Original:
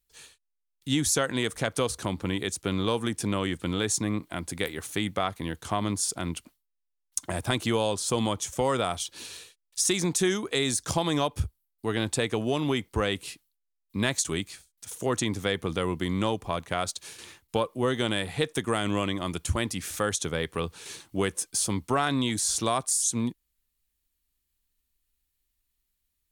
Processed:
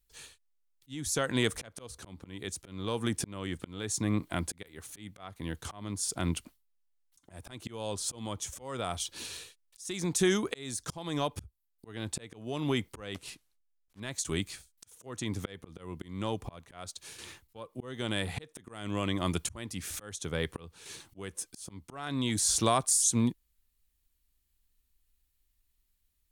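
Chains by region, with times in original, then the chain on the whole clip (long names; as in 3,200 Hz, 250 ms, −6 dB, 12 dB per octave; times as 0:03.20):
0:13.14–0:14.00: one scale factor per block 3 bits + low-pass filter 11,000 Hz
whole clip: low-shelf EQ 100 Hz +7 dB; volume swells 584 ms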